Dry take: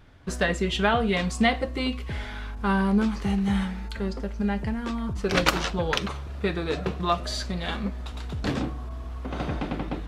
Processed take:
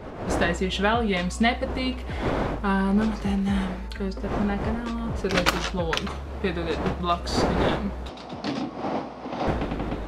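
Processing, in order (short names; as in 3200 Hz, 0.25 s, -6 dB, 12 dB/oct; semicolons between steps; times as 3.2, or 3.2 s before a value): wind noise 640 Hz -32 dBFS; 8.09–9.47 speaker cabinet 200–8600 Hz, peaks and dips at 260 Hz +3 dB, 410 Hz -4 dB, 750 Hz +4 dB, 1600 Hz -6 dB, 5000 Hz +6 dB, 7400 Hz -8 dB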